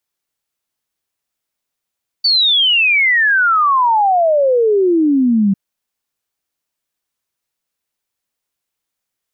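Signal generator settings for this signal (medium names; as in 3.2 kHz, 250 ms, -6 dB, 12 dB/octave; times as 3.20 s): log sweep 4.6 kHz -> 190 Hz 3.30 s -9.5 dBFS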